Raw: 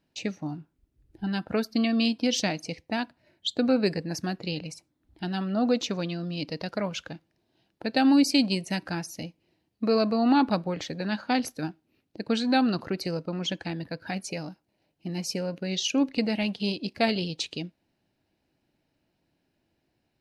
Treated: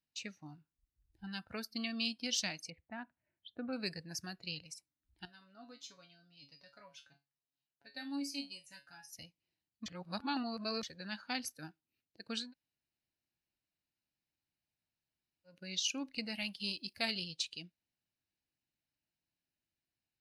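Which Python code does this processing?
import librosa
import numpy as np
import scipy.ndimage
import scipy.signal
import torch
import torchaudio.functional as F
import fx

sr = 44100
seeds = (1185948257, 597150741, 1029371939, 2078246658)

y = fx.gaussian_blur(x, sr, sigma=3.8, at=(2.7, 3.73))
y = fx.comb_fb(y, sr, f0_hz=140.0, decay_s=0.25, harmonics='all', damping=0.0, mix_pct=90, at=(5.25, 9.13))
y = fx.high_shelf(y, sr, hz=8000.0, db=9.0, at=(16.34, 17.24))
y = fx.edit(y, sr, fx.reverse_span(start_s=9.86, length_s=0.97),
    fx.room_tone_fill(start_s=12.46, length_s=3.06, crossfade_s=0.16), tone=tone)
y = fx.notch(y, sr, hz=3300.0, q=23.0)
y = fx.noise_reduce_blind(y, sr, reduce_db=7)
y = fx.tone_stack(y, sr, knobs='5-5-5')
y = y * 10.0 ** (1.5 / 20.0)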